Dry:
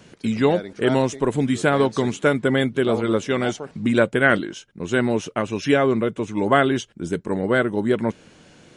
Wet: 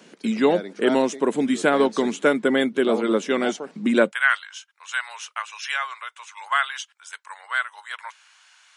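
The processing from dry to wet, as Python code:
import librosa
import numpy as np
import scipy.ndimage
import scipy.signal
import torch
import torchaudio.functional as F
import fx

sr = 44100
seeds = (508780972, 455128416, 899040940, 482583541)

y = fx.steep_highpass(x, sr, hz=fx.steps((0.0, 190.0), (4.11, 960.0)), slope=36)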